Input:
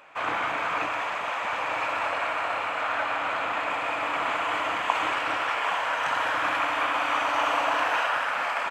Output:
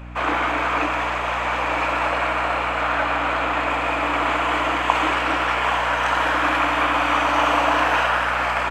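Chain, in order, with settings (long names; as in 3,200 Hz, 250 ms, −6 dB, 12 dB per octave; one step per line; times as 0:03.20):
low shelf with overshoot 210 Hz −11 dB, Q 3
mains hum 60 Hz, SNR 15 dB
level +5.5 dB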